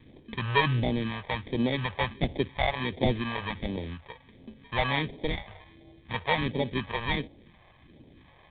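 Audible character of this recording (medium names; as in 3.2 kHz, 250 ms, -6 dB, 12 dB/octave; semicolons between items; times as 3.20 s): aliases and images of a low sample rate 1.4 kHz, jitter 0%; phasing stages 2, 1.4 Hz, lowest notch 260–1300 Hz; G.726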